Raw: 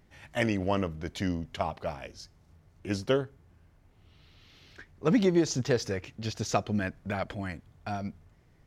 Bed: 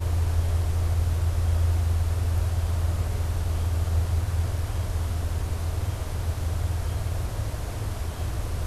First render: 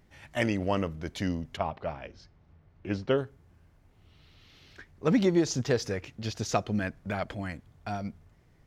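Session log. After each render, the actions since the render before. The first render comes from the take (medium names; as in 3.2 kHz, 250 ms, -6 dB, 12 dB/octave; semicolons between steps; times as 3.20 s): 1.57–3.18 s: low-pass 3.1 kHz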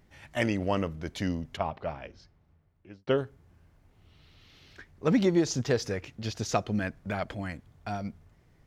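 1.99–3.07 s: fade out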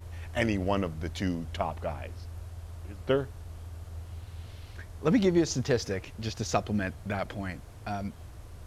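add bed -17 dB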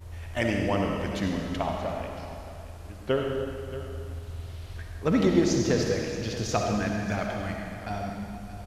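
delay 628 ms -14.5 dB; algorithmic reverb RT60 2.1 s, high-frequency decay 0.95×, pre-delay 25 ms, DRR 0.5 dB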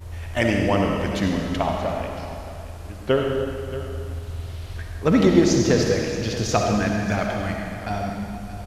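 trim +6 dB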